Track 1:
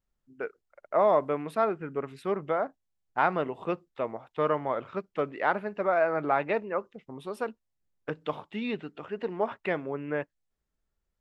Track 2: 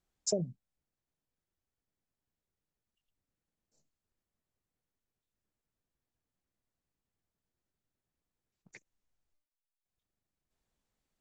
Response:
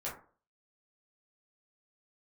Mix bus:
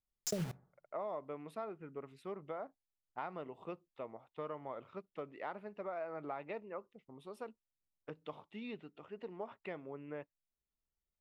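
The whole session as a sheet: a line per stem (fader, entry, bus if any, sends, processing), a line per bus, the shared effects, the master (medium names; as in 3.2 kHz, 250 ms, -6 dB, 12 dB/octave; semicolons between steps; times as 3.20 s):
-12.5 dB, 0.00 s, no send, peaking EQ 1.6 kHz -6.5 dB 0.29 oct
+2.5 dB, 0.00 s, send -20 dB, bass shelf 260 Hz +12 dB; bit crusher 6-bit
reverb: on, RT60 0.40 s, pre-delay 8 ms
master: compression 3:1, threshold -39 dBFS, peak gain reduction 14 dB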